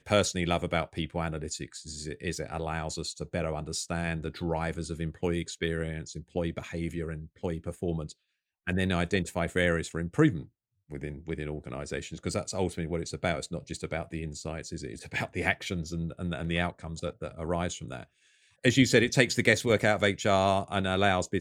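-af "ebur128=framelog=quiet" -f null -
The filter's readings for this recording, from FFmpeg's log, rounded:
Integrated loudness:
  I:         -30.3 LUFS
  Threshold: -40.6 LUFS
Loudness range:
  LRA:         8.5 LU
  Threshold: -51.3 LUFS
  LRA low:   -34.5 LUFS
  LRA high:  -25.9 LUFS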